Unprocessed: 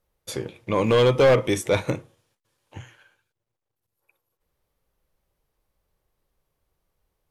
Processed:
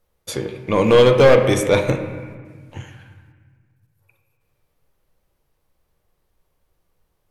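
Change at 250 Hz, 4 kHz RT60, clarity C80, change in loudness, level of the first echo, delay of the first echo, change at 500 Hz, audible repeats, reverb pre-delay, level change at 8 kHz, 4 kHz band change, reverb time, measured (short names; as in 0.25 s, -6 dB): +6.0 dB, 1.2 s, 9.0 dB, +6.0 dB, none, none, +6.0 dB, none, 4 ms, +4.5 dB, +5.0 dB, 1.6 s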